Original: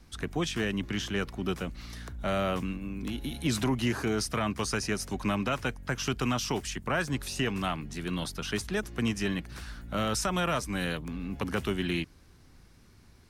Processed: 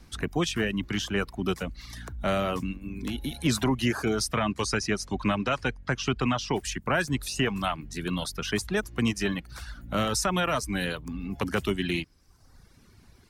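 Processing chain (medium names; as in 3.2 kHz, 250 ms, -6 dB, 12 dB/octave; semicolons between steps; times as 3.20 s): reverb removal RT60 0.94 s; 4.34–6.52 s: low-pass 9.7 kHz -> 4 kHz 12 dB/octave; trim +4 dB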